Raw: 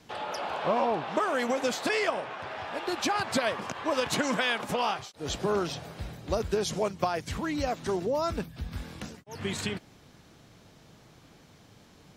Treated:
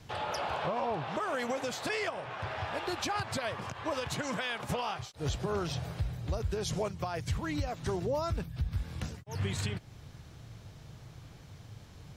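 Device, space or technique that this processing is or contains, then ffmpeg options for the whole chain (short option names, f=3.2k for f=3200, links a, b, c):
car stereo with a boomy subwoofer: -af "lowshelf=f=160:t=q:w=1.5:g=9.5,alimiter=limit=-23.5dB:level=0:latency=1:release=336"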